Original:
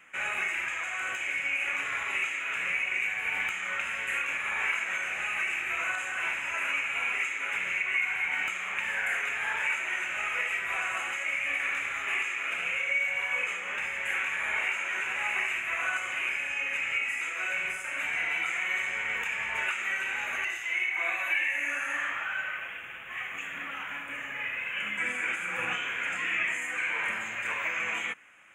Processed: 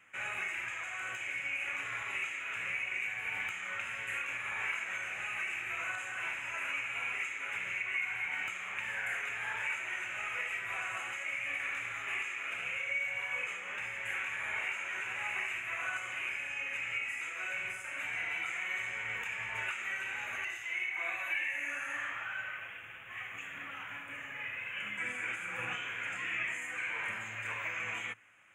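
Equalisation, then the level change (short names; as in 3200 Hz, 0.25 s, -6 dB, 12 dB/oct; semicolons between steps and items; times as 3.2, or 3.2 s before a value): bell 110 Hz +13.5 dB 0.35 oct; -6.5 dB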